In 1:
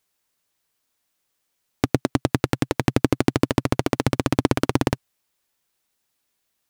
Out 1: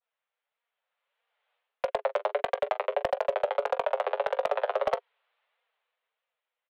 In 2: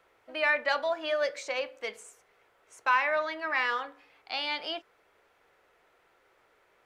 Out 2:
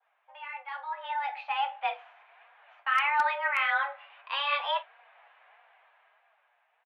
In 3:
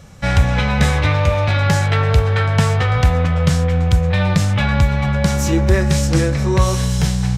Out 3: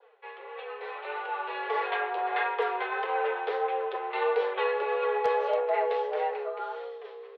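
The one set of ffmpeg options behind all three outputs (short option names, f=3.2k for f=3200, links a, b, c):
-filter_complex "[0:a]adynamicequalizer=threshold=0.0141:dfrequency=2100:dqfactor=1.1:tfrequency=2100:tqfactor=1.1:attack=5:release=100:ratio=0.375:range=2.5:mode=cutabove:tftype=bell,flanger=delay=4.3:depth=5.1:regen=18:speed=1.6:shape=sinusoidal,areverse,acompressor=threshold=-35dB:ratio=5,areverse,highpass=f=180:t=q:w=0.5412,highpass=f=180:t=q:w=1.307,lowpass=f=3.2k:t=q:w=0.5176,lowpass=f=3.2k:t=q:w=0.7071,lowpass=f=3.2k:t=q:w=1.932,afreqshift=280,aemphasis=mode=reproduction:type=50fm,asplit=2[a][b];[b]aecho=0:1:19|43:0.211|0.168[c];[a][c]amix=inputs=2:normalize=0,dynaudnorm=f=250:g=11:m=15dB,aeval=exprs='0.224*(abs(mod(val(0)/0.224+3,4)-2)-1)':c=same,volume=-3dB"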